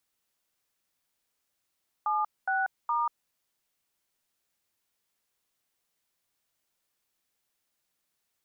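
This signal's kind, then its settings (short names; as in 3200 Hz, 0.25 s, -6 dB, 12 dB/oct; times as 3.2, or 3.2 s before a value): DTMF "76*", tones 0.188 s, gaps 0.227 s, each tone -27.5 dBFS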